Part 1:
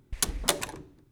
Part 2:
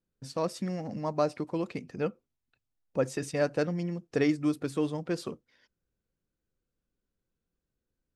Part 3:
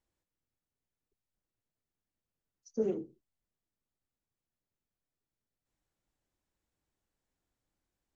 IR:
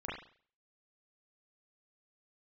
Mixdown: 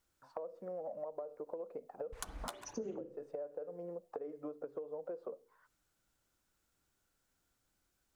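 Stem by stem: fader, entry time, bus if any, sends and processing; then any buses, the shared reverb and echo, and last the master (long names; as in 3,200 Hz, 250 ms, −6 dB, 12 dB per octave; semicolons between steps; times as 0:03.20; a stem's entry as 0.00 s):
−6.0 dB, 2.00 s, bus A, send −19.5 dB, automatic ducking −17 dB, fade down 0.20 s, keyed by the third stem
+2.5 dB, 0.00 s, bus A, send −20 dB, envelope filter 470–1,400 Hz, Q 6.7, down, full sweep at −31 dBFS
+2.5 dB, 0.00 s, no bus, send −13.5 dB, high-shelf EQ 3,100 Hz +7 dB
bus A: 0.0 dB, flat-topped bell 930 Hz +12.5 dB; downward compressor 6 to 1, threshold −35 dBFS, peak gain reduction 15 dB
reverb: on, RT60 0.45 s, pre-delay 34 ms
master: downward compressor 8 to 1, threshold −39 dBFS, peak gain reduction 16.5 dB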